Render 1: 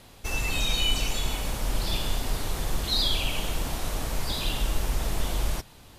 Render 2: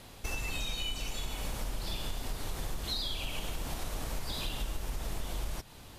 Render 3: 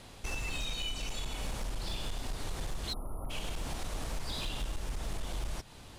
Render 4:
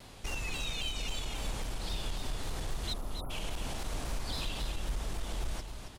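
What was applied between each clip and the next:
compressor 6:1, threshold -32 dBFS, peak gain reduction 13 dB
spectral delete 2.93–3.3, 1400–9500 Hz; bell 13000 Hz -14 dB 0.24 oct; hard clip -30 dBFS, distortion -19 dB
on a send: echo 0.273 s -7.5 dB; on the sum: shaped vibrato saw down 3.7 Hz, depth 100 cents

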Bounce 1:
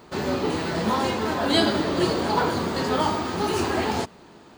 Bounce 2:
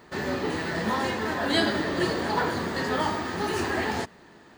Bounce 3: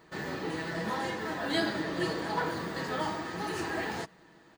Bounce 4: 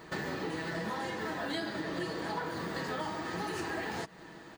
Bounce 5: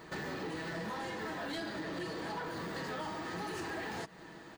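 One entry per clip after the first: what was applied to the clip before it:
bell 1800 Hz +10.5 dB 0.29 oct; gain -4 dB
comb 6.2 ms, depth 46%; gain -7 dB
compressor 6:1, threshold -42 dBFS, peak gain reduction 16.5 dB; gain +8 dB
soft clip -32.5 dBFS, distortion -15 dB; gain -1 dB

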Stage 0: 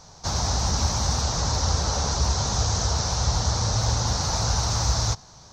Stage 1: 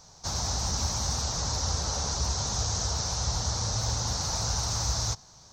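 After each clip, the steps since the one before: high shelf 6300 Hz +9.5 dB; gain -7 dB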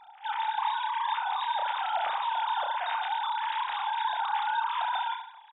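sine-wave speech; reverse bouncing-ball echo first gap 30 ms, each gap 1.25×, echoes 5; gain -3 dB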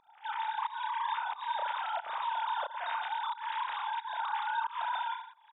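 bell 780 Hz -9.5 dB 0.26 oct; pump 90 bpm, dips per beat 1, -20 dB, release 0.224 s; high shelf 2300 Hz -8.5 dB

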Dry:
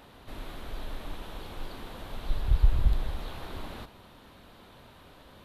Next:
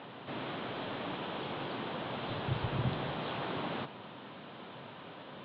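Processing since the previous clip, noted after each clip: elliptic band-pass 130–3300 Hz, stop band 40 dB; gain +6.5 dB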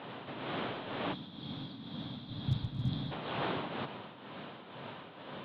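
hard clip -25.5 dBFS, distortion -27 dB; tremolo triangle 2.1 Hz, depth 65%; spectral gain 1.13–3.12, 320–3200 Hz -15 dB; gain +4 dB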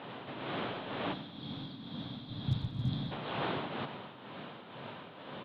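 feedback echo 91 ms, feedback 52%, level -14 dB

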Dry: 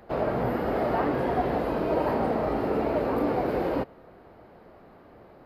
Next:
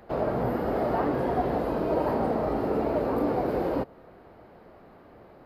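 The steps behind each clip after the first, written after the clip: dynamic EQ 2400 Hz, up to -5 dB, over -46 dBFS, Q 0.9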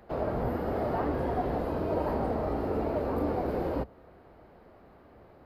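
octaver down 2 oct, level -3 dB; gain -4 dB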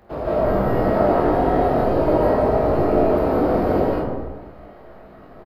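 on a send: reverse bouncing-ball echo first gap 20 ms, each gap 1.5×, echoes 5; on the sum: digital reverb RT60 1.2 s, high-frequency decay 0.4×, pre-delay 0.115 s, DRR -6.5 dB; gain +2 dB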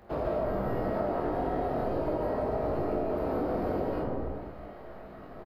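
compressor 6:1, threshold -25 dBFS, peak gain reduction 12.5 dB; gain -2.5 dB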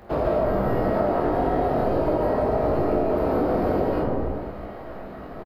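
echo 0.945 s -21 dB; gain +8 dB

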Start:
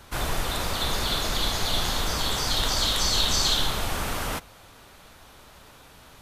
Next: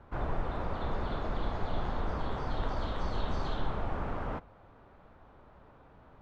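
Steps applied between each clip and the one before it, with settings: LPF 1100 Hz 12 dB/oct; gain -4 dB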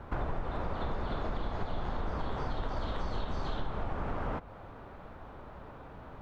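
compressor 5:1, threshold -40 dBFS, peak gain reduction 13.5 dB; gain +9 dB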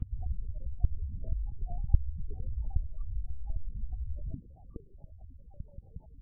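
de-hum 60.13 Hz, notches 36; loudest bins only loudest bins 4; LPC vocoder at 8 kHz whisper; gain +1.5 dB

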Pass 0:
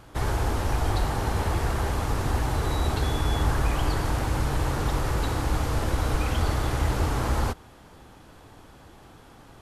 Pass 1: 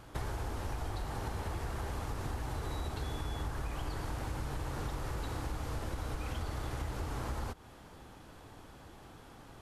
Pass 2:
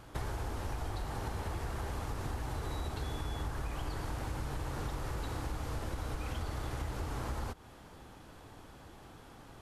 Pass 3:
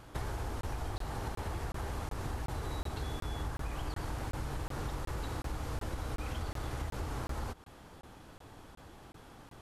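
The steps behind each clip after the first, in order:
compressor 6:1, threshold -31 dBFS, peak gain reduction 13 dB; gain -3.5 dB
nothing audible
crackling interface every 0.37 s, samples 1024, zero, from 0.61

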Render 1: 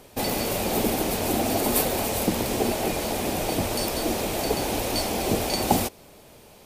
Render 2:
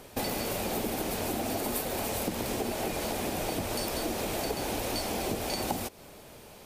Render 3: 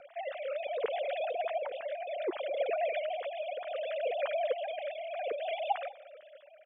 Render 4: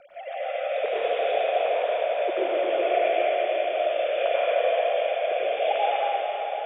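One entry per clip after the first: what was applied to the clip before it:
bell 1500 Hz +2.5 dB; compressor, threshold -29 dBFS, peak gain reduction 13.5 dB
sine-wave speech; rotary speaker horn 0.65 Hz; outdoor echo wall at 34 m, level -22 dB
reverb RT60 5.4 s, pre-delay 83 ms, DRR -10.5 dB

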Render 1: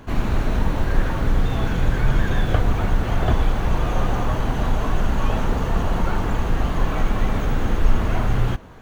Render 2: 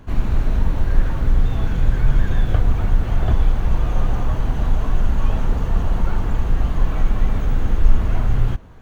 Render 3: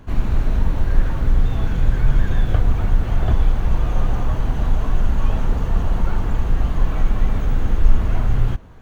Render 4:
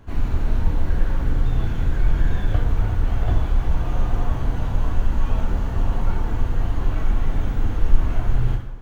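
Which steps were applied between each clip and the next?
low shelf 130 Hz +10 dB; gain -5.5 dB
nothing audible
plate-style reverb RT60 0.86 s, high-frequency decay 0.8×, DRR 1 dB; gain -5 dB

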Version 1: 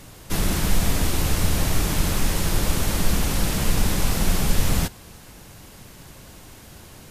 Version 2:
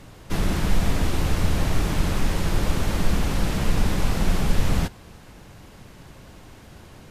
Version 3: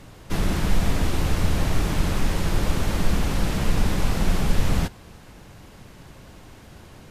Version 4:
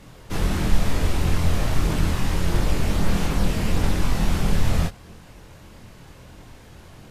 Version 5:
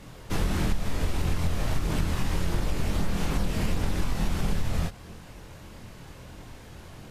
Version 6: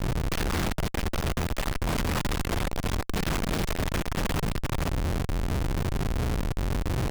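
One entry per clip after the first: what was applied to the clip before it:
LPF 2800 Hz 6 dB/oct
nothing audible
chorus voices 2, 0.78 Hz, delay 24 ms, depth 1.2 ms; gain +3 dB
compressor, threshold -21 dBFS, peak gain reduction 11.5 dB
Schmitt trigger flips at -41 dBFS

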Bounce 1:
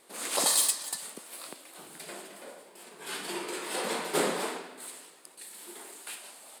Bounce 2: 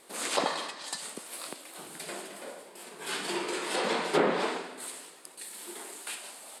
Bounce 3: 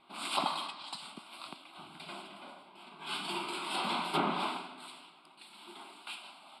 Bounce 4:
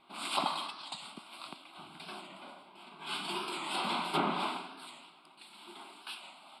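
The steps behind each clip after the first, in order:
treble ducked by the level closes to 2100 Hz, closed at -23 dBFS; gain +3.5 dB
low-pass opened by the level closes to 2900 Hz, open at -27.5 dBFS; fixed phaser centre 1800 Hz, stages 6
record warp 45 rpm, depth 100 cents

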